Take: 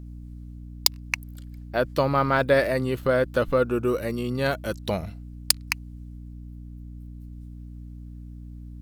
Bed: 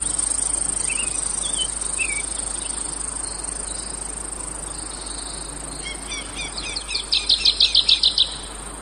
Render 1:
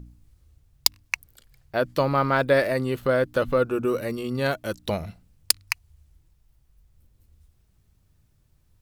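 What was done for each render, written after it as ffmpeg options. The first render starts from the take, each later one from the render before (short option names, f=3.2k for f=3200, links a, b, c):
-af "bandreject=f=60:t=h:w=4,bandreject=f=120:t=h:w=4,bandreject=f=180:t=h:w=4,bandreject=f=240:t=h:w=4,bandreject=f=300:t=h:w=4"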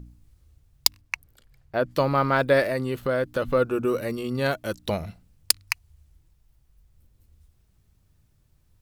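-filter_complex "[0:a]asettb=1/sr,asplit=3[a][b][c];[a]atrim=end=1.014[d];[b]atrim=start=1.01:end=1.91,asetpts=PTS-STARTPTS,afade=t=in:d=0.004:c=qsin,afade=t=out:st=0.896:d=0.004:c=qsin,highshelf=f=2.9k:g=-7.5[e];[c]atrim=start=1.906[f];[d][e]acrossfade=d=0.004:c1=hsin:c2=qsin[g];[g][f]acrossfade=d=0.004:c1=qsin:c2=hsin,asettb=1/sr,asplit=3[h][i][j];[h]atrim=end=2.634[k];[i]atrim=start=2.63:end=3.45,asetpts=PTS-STARTPTS,afade=t=in:d=0.004:c=qsin,afade=t=out:st=0.816:d=0.004:c=qsin,acompressor=threshold=-25dB:ratio=1.5:attack=3.2:release=140:knee=1:detection=peak[l];[j]atrim=start=3.446[m];[k][l]acrossfade=d=0.004:c1=hsin:c2=qsin[n];[n][m]acrossfade=d=0.004:c1=qsin:c2=hsin"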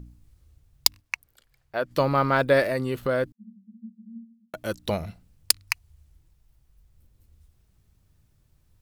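-filter_complex "[0:a]asettb=1/sr,asplit=3[a][b][c];[a]atrim=end=1.004[d];[b]atrim=start=1:end=1.91,asetpts=PTS-STARTPTS,afade=t=in:d=0.004:c=qsin,afade=t=out:st=0.906:d=0.004:c=qsin,lowshelf=f=390:g=-10.5[e];[c]atrim=start=1.906[f];[d][e]acrossfade=d=0.004:c1=hsin:c2=qsin[g];[g][f]acrossfade=d=0.004:c1=qsin:c2=hsin,asettb=1/sr,asplit=3[h][i][j];[h]atrim=end=3.324[k];[i]atrim=start=3.32:end=4.54,asetpts=PTS-STARTPTS,afade=t=in:d=0.004:c=qsin,afade=t=out:st=1.216:d=0.004:c=qsin,asuperpass=centerf=210:order=20:qfactor=5.2[l];[j]atrim=start=4.536[m];[k][l]acrossfade=d=0.004:c1=hsin:c2=qsin[n];[n][m]acrossfade=d=0.004:c1=qsin:c2=hsin"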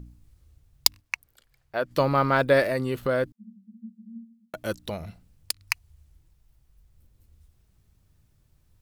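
-filter_complex "[0:a]asettb=1/sr,asplit=3[a][b][c];[a]atrim=end=4.784[d];[b]atrim=start=4.78:end=5.61,asetpts=PTS-STARTPTS,afade=t=in:d=0.004:c=qsin,afade=t=out:st=0.826:d=0.004:c=qsin,acompressor=threshold=-39dB:ratio=1.5:attack=3.2:release=140:knee=1:detection=peak[e];[c]atrim=start=5.606[f];[d][e]acrossfade=d=0.004:c1=hsin:c2=qsin[g];[g][f]acrossfade=d=0.004:c1=qsin:c2=hsin"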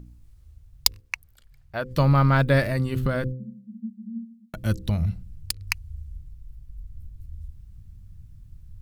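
-af "bandreject=f=64.22:t=h:w=4,bandreject=f=128.44:t=h:w=4,bandreject=f=192.66:t=h:w=4,bandreject=f=256.88:t=h:w=4,bandreject=f=321.1:t=h:w=4,bandreject=f=385.32:t=h:w=4,bandreject=f=449.54:t=h:w=4,bandreject=f=513.76:t=h:w=4,asubboost=boost=11.5:cutoff=150"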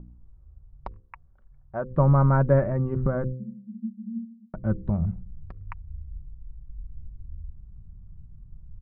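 -af "lowpass=f=1.2k:w=0.5412,lowpass=f=1.2k:w=1.3066,aecho=1:1:5.3:0.31"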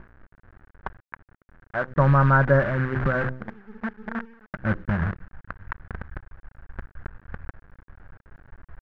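-af "acrusher=bits=6:dc=4:mix=0:aa=0.000001,lowpass=f=1.6k:t=q:w=5.2"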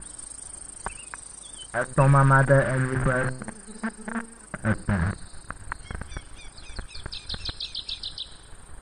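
-filter_complex "[1:a]volume=-18dB[a];[0:a][a]amix=inputs=2:normalize=0"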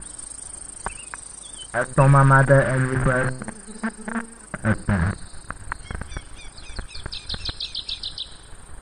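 -af "volume=3.5dB"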